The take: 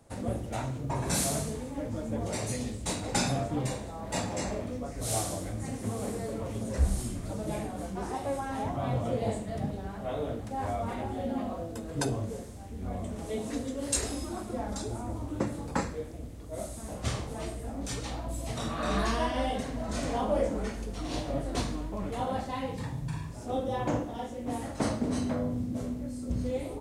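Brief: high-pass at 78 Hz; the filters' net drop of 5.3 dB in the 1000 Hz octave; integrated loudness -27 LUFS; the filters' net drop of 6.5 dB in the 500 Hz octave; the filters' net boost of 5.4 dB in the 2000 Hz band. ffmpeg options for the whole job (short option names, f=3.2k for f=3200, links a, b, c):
-af "highpass=78,equalizer=f=500:t=o:g=-6.5,equalizer=f=1k:t=o:g=-6.5,equalizer=f=2k:t=o:g=9,volume=8dB"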